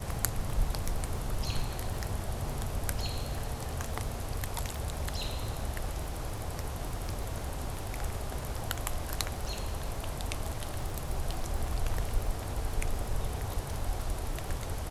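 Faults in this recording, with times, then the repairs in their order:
crackle 32 per s -36 dBFS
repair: de-click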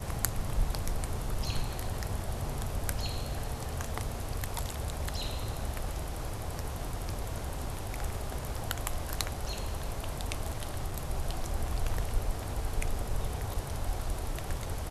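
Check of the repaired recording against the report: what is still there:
nothing left

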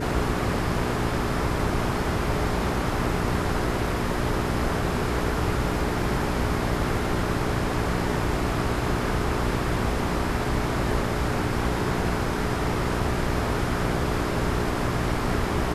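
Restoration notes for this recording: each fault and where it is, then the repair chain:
hum 60 Hz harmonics 7 -30 dBFS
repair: de-hum 60 Hz, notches 7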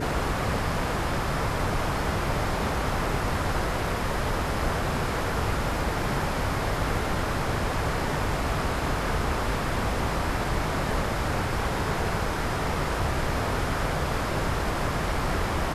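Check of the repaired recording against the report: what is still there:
nothing left

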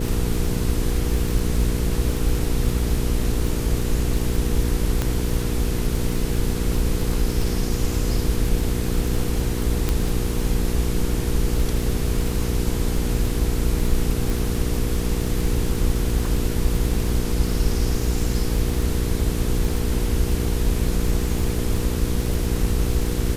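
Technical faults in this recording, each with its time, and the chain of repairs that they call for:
crackle 34 per s -25 dBFS
hum 60 Hz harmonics 8 -26 dBFS
5.02 s: pop -9 dBFS
9.89 s: pop -8 dBFS
14.30 s: pop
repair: de-click; de-hum 60 Hz, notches 8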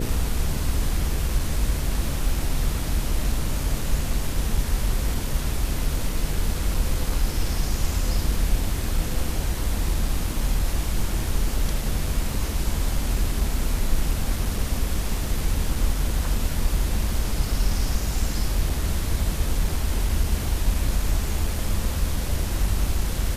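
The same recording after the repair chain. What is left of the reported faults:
5.02 s: pop

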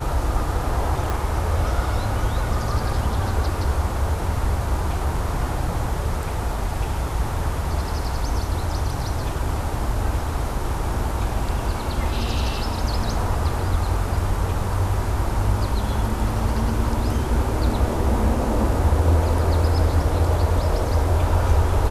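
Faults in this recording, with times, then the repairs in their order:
1.10 s: pop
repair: de-click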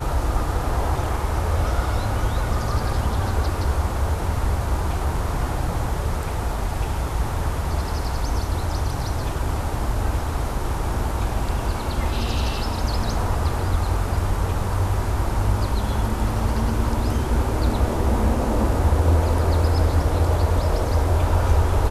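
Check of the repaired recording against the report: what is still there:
nothing left

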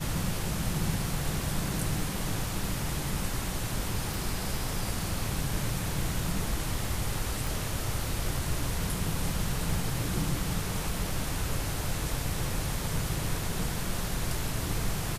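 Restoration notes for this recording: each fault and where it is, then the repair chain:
4.14 s: pop
7.47 s: pop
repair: de-click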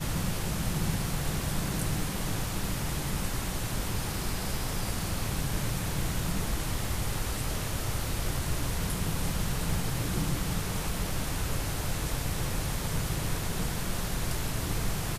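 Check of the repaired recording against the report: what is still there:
nothing left

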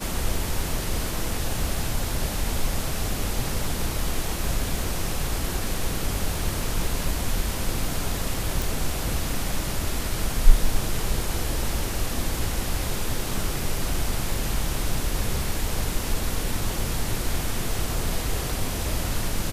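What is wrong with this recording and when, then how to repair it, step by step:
8.62 s: pop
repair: de-click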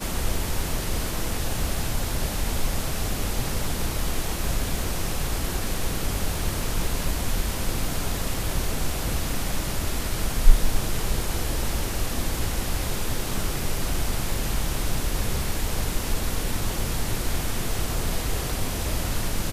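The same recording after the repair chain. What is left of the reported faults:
nothing left

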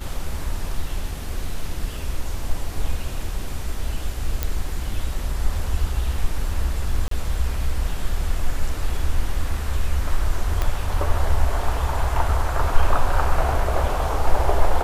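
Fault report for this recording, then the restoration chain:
4.43 s: pop
7.08–7.11 s: dropout 33 ms
10.62 s: pop -9 dBFS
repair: de-click; interpolate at 7.08 s, 33 ms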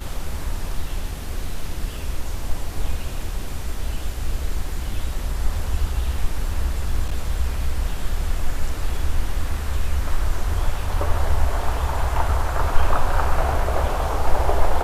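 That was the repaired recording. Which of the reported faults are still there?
10.62 s: pop

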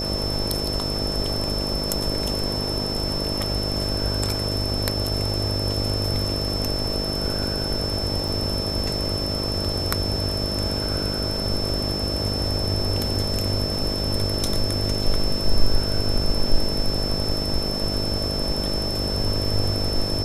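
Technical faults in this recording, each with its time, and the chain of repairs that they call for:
buzz 50 Hz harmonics 13 -29 dBFS
whine 5.3 kHz -27 dBFS
8.28–8.29 s: dropout 5 ms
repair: de-hum 50 Hz, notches 13; band-stop 5.3 kHz, Q 30; interpolate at 8.28 s, 5 ms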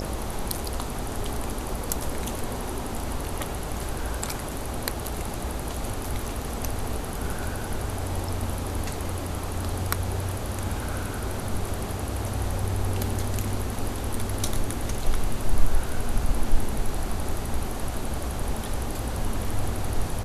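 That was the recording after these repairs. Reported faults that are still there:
nothing left

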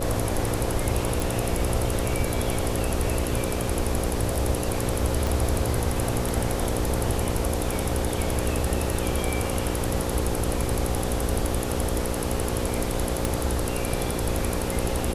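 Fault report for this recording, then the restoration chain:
buzz 60 Hz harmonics 9 -30 dBFS
1.20 s: pop
5.27 s: pop
13.25 s: pop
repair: de-click; de-hum 60 Hz, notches 9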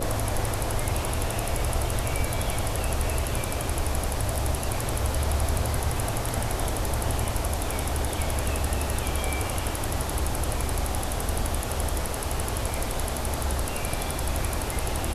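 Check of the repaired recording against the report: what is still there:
13.25 s: pop

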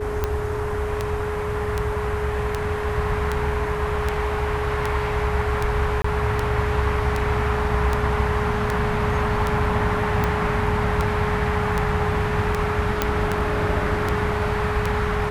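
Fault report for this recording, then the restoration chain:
tick 78 rpm -9 dBFS
whine 420 Hz -26 dBFS
6.02–6.04 s: dropout 24 ms
13.02 s: pop -4 dBFS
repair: de-click; band-stop 420 Hz, Q 30; interpolate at 6.02 s, 24 ms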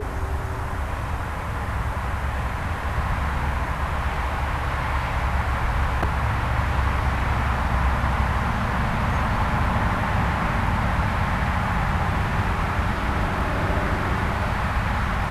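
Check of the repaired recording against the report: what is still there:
13.02 s: pop

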